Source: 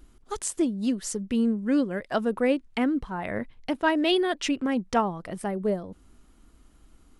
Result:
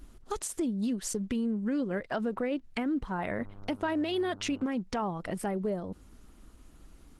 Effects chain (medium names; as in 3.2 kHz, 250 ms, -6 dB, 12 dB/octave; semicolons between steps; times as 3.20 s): 1.62–2.64 s: peaking EQ 9.9 kHz -3 dB -> -10 dB 0.76 oct; peak limiter -22 dBFS, peak gain reduction 10.5 dB; compression 2:1, threshold -35 dBFS, peak gain reduction 6 dB; 3.39–4.63 s: mains buzz 100 Hz, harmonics 15, -53 dBFS -6 dB/octave; trim +3.5 dB; Opus 16 kbps 48 kHz